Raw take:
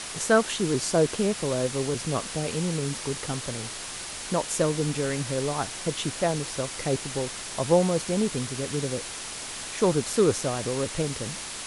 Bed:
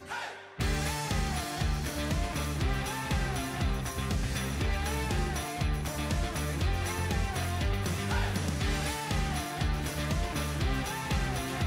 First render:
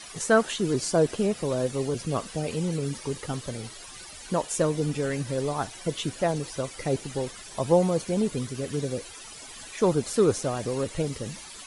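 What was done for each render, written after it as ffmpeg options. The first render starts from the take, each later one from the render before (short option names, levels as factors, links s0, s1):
-af "afftdn=nr=14:nf=-37"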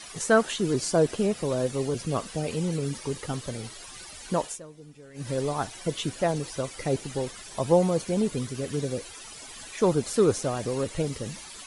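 -filter_complex "[0:a]asplit=3[s0][s1][s2];[s0]atrim=end=4.6,asetpts=PTS-STARTPTS,afade=t=out:st=4.46:d=0.14:silence=0.0944061[s3];[s1]atrim=start=4.6:end=5.14,asetpts=PTS-STARTPTS,volume=0.0944[s4];[s2]atrim=start=5.14,asetpts=PTS-STARTPTS,afade=t=in:d=0.14:silence=0.0944061[s5];[s3][s4][s5]concat=n=3:v=0:a=1"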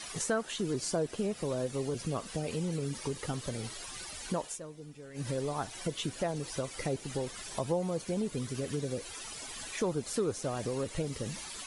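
-af "acompressor=threshold=0.0224:ratio=2.5"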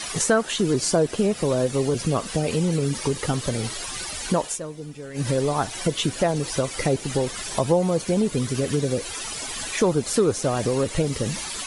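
-af "volume=3.76"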